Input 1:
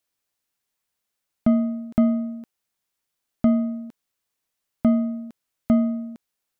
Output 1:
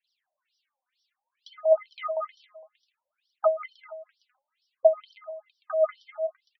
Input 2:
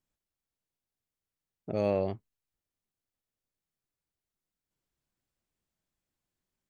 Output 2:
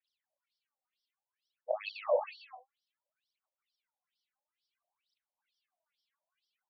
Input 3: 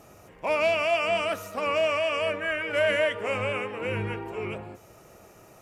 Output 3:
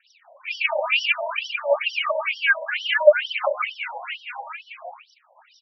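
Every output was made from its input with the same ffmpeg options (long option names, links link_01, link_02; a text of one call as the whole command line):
ffmpeg -i in.wav -af "aemphasis=mode=production:type=50kf,aecho=1:1:190|313.5|393.8|446|479.9:0.631|0.398|0.251|0.158|0.1,asoftclip=type=hard:threshold=-10dB,aphaser=in_gain=1:out_gain=1:delay=4.1:decay=0.79:speed=0.58:type=triangular,adynamicequalizer=threshold=0.0316:dfrequency=670:dqfactor=1.8:tfrequency=670:tqfactor=1.8:attack=5:release=100:ratio=0.375:range=2:mode=boostabove:tftype=bell,afftfilt=real='re*between(b*sr/1024,690*pow(4200/690,0.5+0.5*sin(2*PI*2.2*pts/sr))/1.41,690*pow(4200/690,0.5+0.5*sin(2*PI*2.2*pts/sr))*1.41)':imag='im*between(b*sr/1024,690*pow(4200/690,0.5+0.5*sin(2*PI*2.2*pts/sr))/1.41,690*pow(4200/690,0.5+0.5*sin(2*PI*2.2*pts/sr))*1.41)':win_size=1024:overlap=0.75,volume=2dB" out.wav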